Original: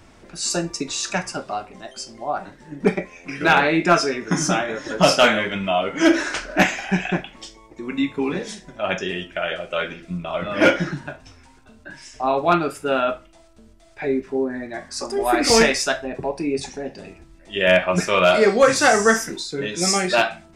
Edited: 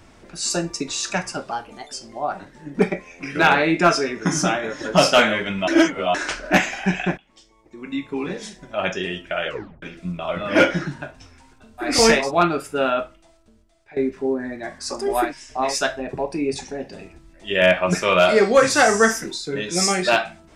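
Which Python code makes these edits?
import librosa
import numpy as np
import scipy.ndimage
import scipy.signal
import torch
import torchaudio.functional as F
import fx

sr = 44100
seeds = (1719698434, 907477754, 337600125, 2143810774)

y = fx.edit(x, sr, fx.speed_span(start_s=1.51, length_s=0.48, speed=1.13),
    fx.reverse_span(start_s=5.73, length_s=0.47),
    fx.fade_in_from(start_s=7.23, length_s=1.57, floor_db=-19.5),
    fx.tape_stop(start_s=9.53, length_s=0.35),
    fx.swap(start_s=11.91, length_s=0.43, other_s=15.37, other_length_s=0.38, crossfade_s=0.16),
    fx.fade_out_to(start_s=12.98, length_s=1.09, floor_db=-16.5), tone=tone)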